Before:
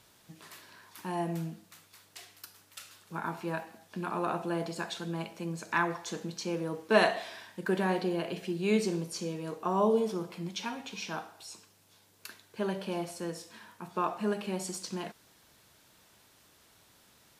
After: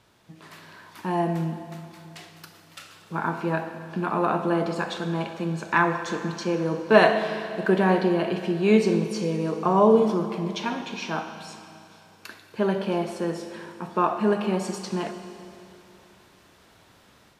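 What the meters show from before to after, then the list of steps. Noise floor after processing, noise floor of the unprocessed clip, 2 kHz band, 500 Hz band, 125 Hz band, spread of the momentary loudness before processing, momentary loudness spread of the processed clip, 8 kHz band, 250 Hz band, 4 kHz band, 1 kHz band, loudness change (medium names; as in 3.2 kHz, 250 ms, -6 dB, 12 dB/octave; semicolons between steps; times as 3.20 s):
-56 dBFS, -63 dBFS, +7.5 dB, +9.0 dB, +9.0 dB, 21 LU, 19 LU, 0.0 dB, +9.5 dB, +4.5 dB, +8.5 dB, +8.5 dB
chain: Schroeder reverb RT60 2.9 s, combs from 25 ms, DRR 8 dB; level rider gain up to 5.5 dB; low-pass 2.4 kHz 6 dB/octave; trim +3.5 dB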